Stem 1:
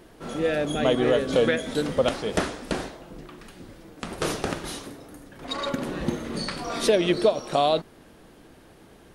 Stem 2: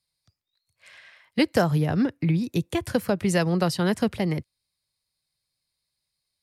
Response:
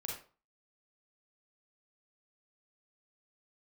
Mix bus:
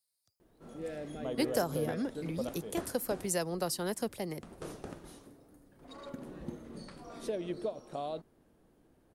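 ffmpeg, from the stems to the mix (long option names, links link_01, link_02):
-filter_complex "[0:a]adelay=400,volume=-14dB[link_01];[1:a]bass=frequency=250:gain=-14,treble=frequency=4000:gain=11,volume=-5.5dB[link_02];[link_01][link_02]amix=inputs=2:normalize=0,equalizer=frequency=3200:width=0.36:gain=-9.5"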